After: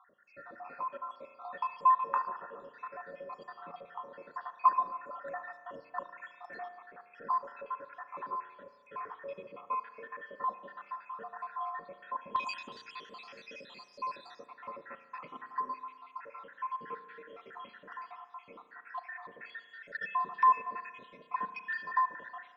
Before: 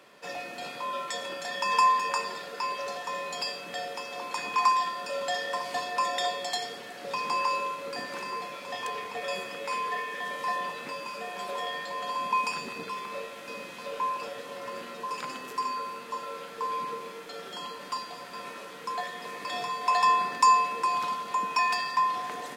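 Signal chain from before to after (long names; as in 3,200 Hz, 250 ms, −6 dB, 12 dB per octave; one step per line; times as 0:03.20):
time-frequency cells dropped at random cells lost 72%
low-pass with resonance 1,300 Hz, resonance Q 2.8, from 0:12.36 4,400 Hz, from 0:14.46 1,700 Hz
spring reverb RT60 1.5 s, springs 35 ms, chirp 70 ms, DRR 10.5 dB
level −6.5 dB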